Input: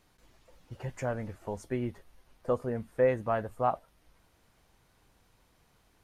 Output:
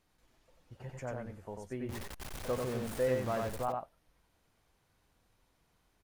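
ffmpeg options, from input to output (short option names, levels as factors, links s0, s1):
-filter_complex "[0:a]asettb=1/sr,asplit=3[s0][s1][s2];[s0]atrim=end=1.894[s3];[s1]atrim=start=1.89:end=3.63,asetpts=PTS-STARTPTS,afade=t=in:d=0.004:c=qsin,afade=t=out:st=1.736:d=0.004:c=qsin,aeval=exprs='val(0)+0.5*0.0316*sgn(val(0))':c=same[s4];[s2]atrim=start=3.626[s5];[s3][s4]acrossfade=d=0.004:c1=hsin:c2=qsin[s6];[s6][s5]acrossfade=d=0.004:c1=qsin:c2=hsin,asplit=2[s7][s8];[s8]aecho=0:1:93:0.668[s9];[s7][s9]amix=inputs=2:normalize=0,volume=0.398"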